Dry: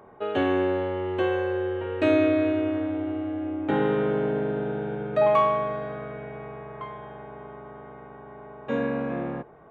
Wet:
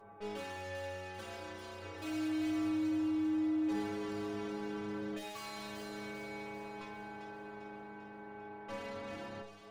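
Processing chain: valve stage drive 39 dB, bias 0.55; inharmonic resonator 100 Hz, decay 0.43 s, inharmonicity 0.008; feedback echo behind a high-pass 396 ms, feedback 53%, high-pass 3.1 kHz, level -4 dB; trim +9 dB

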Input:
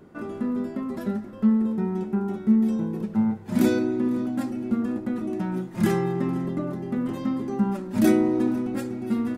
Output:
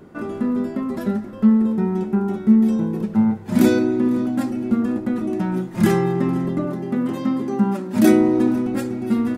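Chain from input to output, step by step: 6.65–8.13 s: high-pass 130 Hz; trim +5.5 dB

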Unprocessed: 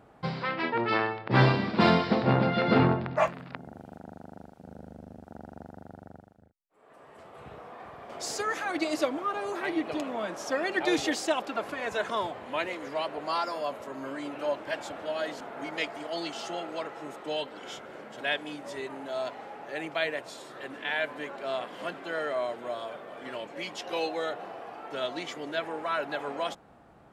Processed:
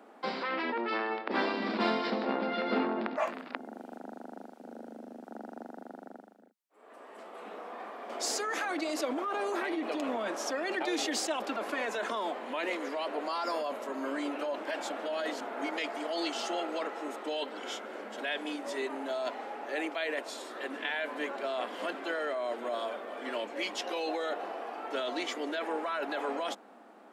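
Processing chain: steep high-pass 210 Hz 72 dB/octave; in parallel at +2 dB: compressor with a negative ratio -34 dBFS, ratio -0.5; on the sum: trim -7 dB

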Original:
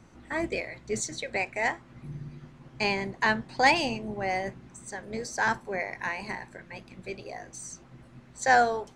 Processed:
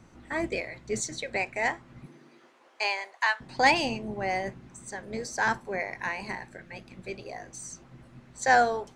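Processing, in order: 2.05–3.40 s: high-pass 250 Hz -> 870 Hz 24 dB/octave; 6.43–6.88 s: band-stop 1 kHz, Q 5.8

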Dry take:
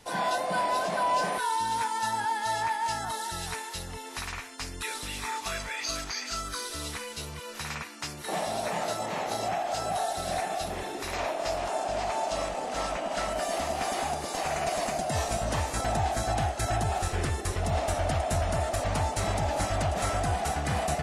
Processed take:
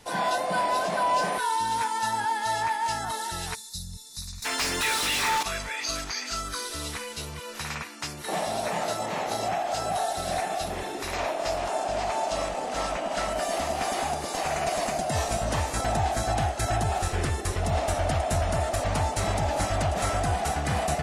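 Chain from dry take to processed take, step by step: 4.42–5.43 s: overdrive pedal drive 28 dB, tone 6 kHz, clips at -20.5 dBFS; 3.55–4.45 s: time-frequency box 220–3500 Hz -23 dB; trim +2 dB

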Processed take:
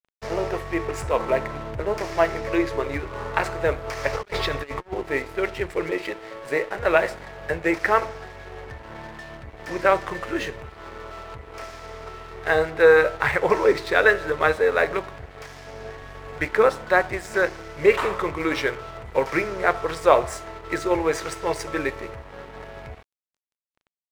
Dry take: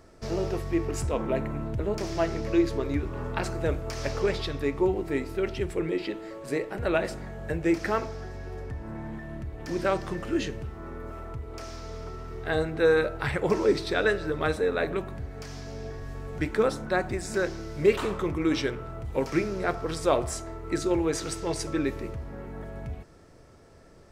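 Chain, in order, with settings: graphic EQ 250/500/1000/2000 Hz -6/+7/+8/+10 dB; 4.13–4.94 s: compressor with a negative ratio -27 dBFS, ratio -0.5; crossover distortion -39.5 dBFS

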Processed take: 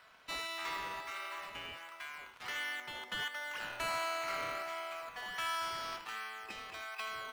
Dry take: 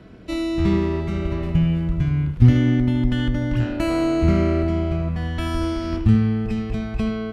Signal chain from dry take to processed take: high-pass 940 Hz 24 dB/octave; in parallel at -8 dB: decimation with a swept rate 12×, swing 100% 1.4 Hz; on the sum: saturation -23 dBFS, distortion -22 dB; trim -4 dB

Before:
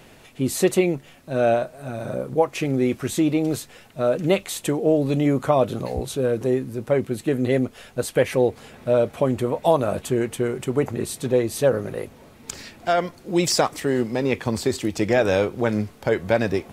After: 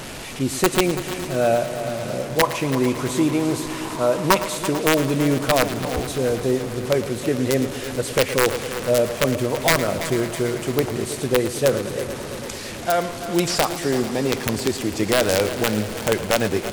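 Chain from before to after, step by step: one-bit delta coder 64 kbps, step -28 dBFS; integer overflow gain 8.5 dB; 2.43–4.56 s: peaking EQ 1 kHz +13.5 dB 0.38 oct; multi-head delay 111 ms, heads first and third, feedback 71%, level -13.5 dB

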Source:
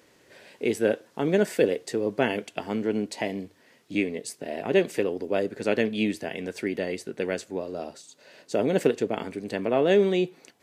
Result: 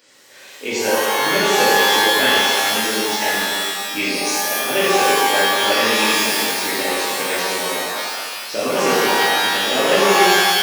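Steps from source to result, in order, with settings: knee-point frequency compression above 3.1 kHz 1.5:1; RIAA curve recording; pitch-shifted reverb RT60 1.8 s, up +12 st, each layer -2 dB, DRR -9 dB; trim -1 dB

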